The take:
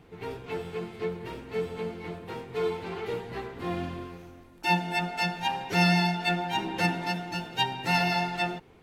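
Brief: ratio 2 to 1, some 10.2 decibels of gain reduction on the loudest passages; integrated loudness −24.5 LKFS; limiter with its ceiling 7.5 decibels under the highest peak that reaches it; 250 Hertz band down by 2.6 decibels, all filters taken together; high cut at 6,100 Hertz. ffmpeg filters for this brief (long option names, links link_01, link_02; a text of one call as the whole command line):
ffmpeg -i in.wav -af "lowpass=6100,equalizer=frequency=250:width_type=o:gain=-5,acompressor=threshold=-39dB:ratio=2,volume=15.5dB,alimiter=limit=-13.5dB:level=0:latency=1" out.wav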